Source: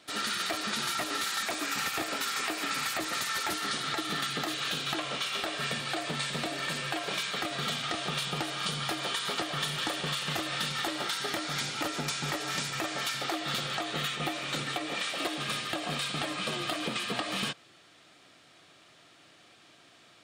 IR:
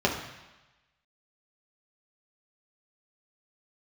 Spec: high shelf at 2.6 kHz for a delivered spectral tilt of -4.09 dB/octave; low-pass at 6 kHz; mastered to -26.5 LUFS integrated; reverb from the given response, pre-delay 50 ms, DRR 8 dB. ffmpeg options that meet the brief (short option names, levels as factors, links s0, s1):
-filter_complex "[0:a]lowpass=6000,highshelf=f=2600:g=-6.5,asplit=2[s0][s1];[1:a]atrim=start_sample=2205,adelay=50[s2];[s1][s2]afir=irnorm=-1:irlink=0,volume=0.0841[s3];[s0][s3]amix=inputs=2:normalize=0,volume=2.24"